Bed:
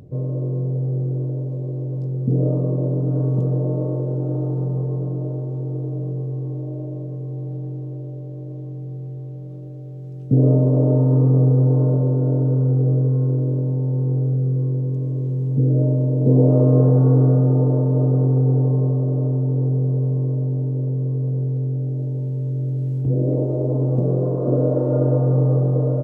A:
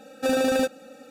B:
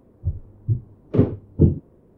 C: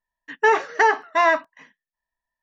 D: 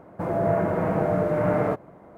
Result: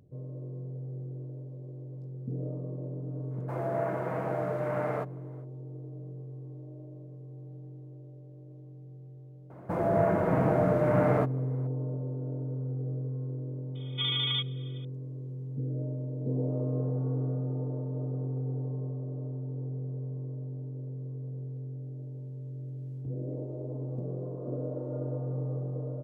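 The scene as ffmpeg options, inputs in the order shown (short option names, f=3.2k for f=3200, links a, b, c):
-filter_complex "[4:a]asplit=2[a][b];[0:a]volume=-16.5dB[c];[a]highpass=f=450:p=1[d];[1:a]lowpass=f=3.2k:t=q:w=0.5098,lowpass=f=3.2k:t=q:w=0.6013,lowpass=f=3.2k:t=q:w=0.9,lowpass=f=3.2k:t=q:w=2.563,afreqshift=-3800[e];[d]atrim=end=2.17,asetpts=PTS-STARTPTS,volume=-6dB,afade=t=in:d=0.05,afade=t=out:st=2.12:d=0.05,adelay=145089S[f];[b]atrim=end=2.17,asetpts=PTS-STARTPTS,volume=-2.5dB,afade=t=in:d=0.004:c=hsin,afade=t=out:st=2.166:d=0.004:c=hsin,adelay=9500[g];[e]atrim=end=1.1,asetpts=PTS-STARTPTS,volume=-8.5dB,afade=t=in:d=0.004:c=hsin,afade=t=out:st=1.096:d=0.004:c=hsin,adelay=13750[h];[c][f][g][h]amix=inputs=4:normalize=0"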